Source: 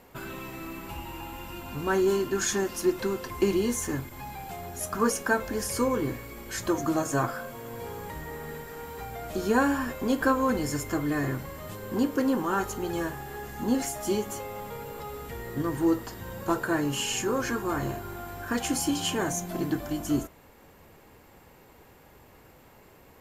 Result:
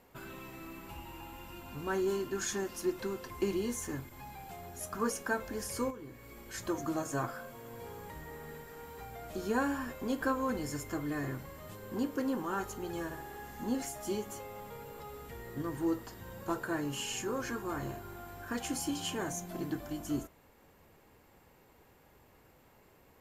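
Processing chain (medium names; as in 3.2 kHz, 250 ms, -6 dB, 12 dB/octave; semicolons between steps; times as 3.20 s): 5.90–6.54 s: compression 6:1, threshold -36 dBFS, peak gain reduction 12 dB; 13.04–13.69 s: flutter echo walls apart 11.8 m, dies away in 0.64 s; trim -8 dB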